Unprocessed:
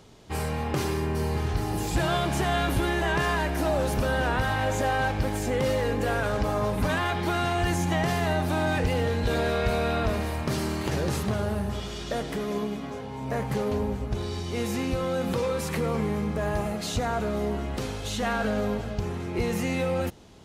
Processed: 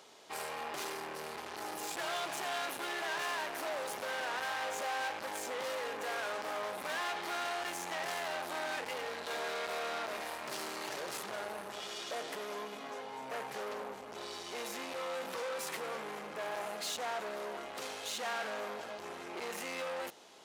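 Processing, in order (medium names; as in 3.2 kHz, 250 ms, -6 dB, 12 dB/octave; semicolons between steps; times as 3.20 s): saturation -32.5 dBFS, distortion -7 dB; high-pass 560 Hz 12 dB/octave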